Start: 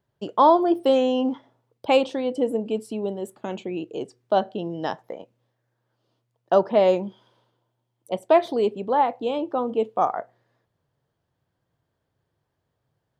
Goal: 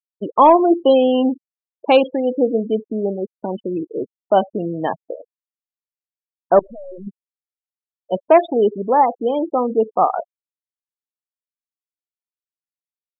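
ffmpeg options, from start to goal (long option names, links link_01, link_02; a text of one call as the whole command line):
ffmpeg -i in.wav -filter_complex "[0:a]acontrast=39,asettb=1/sr,asplit=3[link_01][link_02][link_03];[link_01]atrim=end=6.594[link_04];[link_02]atrim=start=6.59:end=7.07,asetpts=PTS-STARTPTS,afade=type=in:duration=0.004:curve=qsin,afade=type=out:start_time=0.476:duration=0.004:curve=qsin,aeval=exprs='(tanh(44.7*val(0)+0.75)-tanh(0.75))/44.7':channel_layout=same[link_05];[link_03]atrim=start=7.066[link_06];[link_04][link_05]acrossfade=duration=0.004:curve1=hsin:curve2=qsin[link_07];[link_07][link_06]acrossfade=duration=0.004:curve1=qsin:curve2=hsin,afftfilt=real='re*gte(hypot(re,im),0.1)':imag='im*gte(hypot(re,im),0.1)':win_size=1024:overlap=0.75,volume=1dB" out.wav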